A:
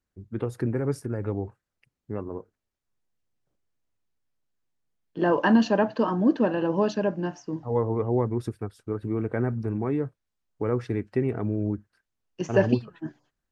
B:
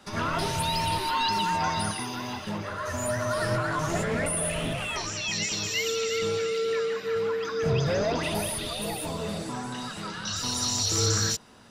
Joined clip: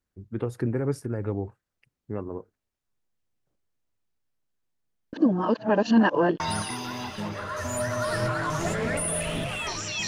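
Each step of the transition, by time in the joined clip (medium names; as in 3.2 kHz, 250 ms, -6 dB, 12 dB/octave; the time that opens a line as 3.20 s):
A
5.13–6.40 s: reverse
6.40 s: go over to B from 1.69 s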